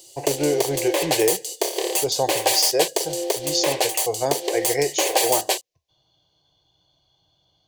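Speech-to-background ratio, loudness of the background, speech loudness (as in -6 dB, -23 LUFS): -2.0 dB, -23.0 LUFS, -25.0 LUFS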